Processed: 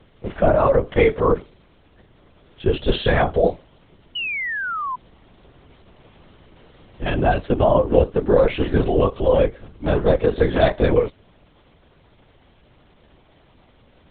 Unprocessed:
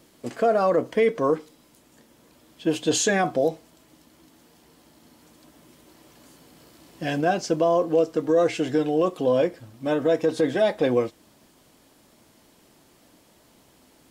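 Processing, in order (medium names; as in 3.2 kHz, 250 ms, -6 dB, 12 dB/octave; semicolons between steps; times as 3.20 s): LPC vocoder at 8 kHz whisper; painted sound fall, 4.15–4.96 s, 980–3000 Hz -30 dBFS; trim +4.5 dB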